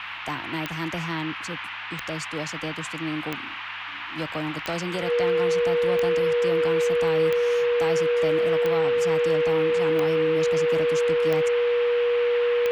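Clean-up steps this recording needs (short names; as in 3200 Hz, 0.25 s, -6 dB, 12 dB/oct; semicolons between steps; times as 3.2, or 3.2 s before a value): de-click; de-hum 101.7 Hz, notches 4; notch 480 Hz, Q 30; noise print and reduce 30 dB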